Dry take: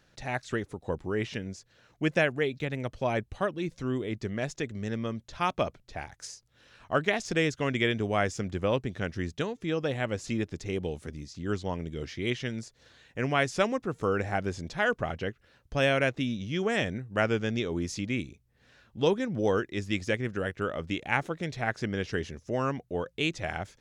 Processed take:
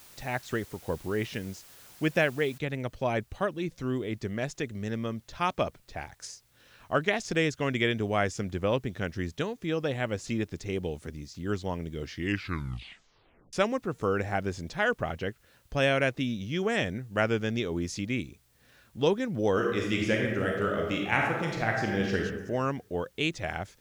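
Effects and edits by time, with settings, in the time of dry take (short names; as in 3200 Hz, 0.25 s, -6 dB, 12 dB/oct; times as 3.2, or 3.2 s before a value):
2.58 noise floor step -53 dB -69 dB
12.08 tape stop 1.45 s
19.51–22.18 reverb throw, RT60 1.1 s, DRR -0.5 dB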